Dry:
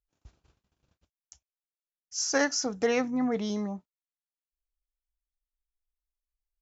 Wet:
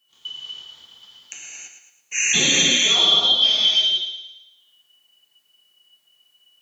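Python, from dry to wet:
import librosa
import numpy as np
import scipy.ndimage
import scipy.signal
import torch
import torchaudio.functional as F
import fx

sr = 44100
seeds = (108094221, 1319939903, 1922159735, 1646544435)

p1 = fx.band_shuffle(x, sr, order='2413')
p2 = fx.low_shelf(p1, sr, hz=77.0, db=-10.0)
p3 = fx.over_compress(p2, sr, threshold_db=-31.0, ratio=-1.0)
p4 = p2 + F.gain(torch.from_numpy(p3), -2.0).numpy()
p5 = scipy.signal.sosfilt(scipy.signal.butter(2, 44.0, 'highpass', fs=sr, output='sos'), p4)
p6 = p5 + fx.echo_thinned(p5, sr, ms=111, feedback_pct=41, hz=290.0, wet_db=-9.0, dry=0)
p7 = fx.rev_gated(p6, sr, seeds[0], gate_ms=360, shape='flat', drr_db=-7.0)
y = fx.band_squash(p7, sr, depth_pct=40)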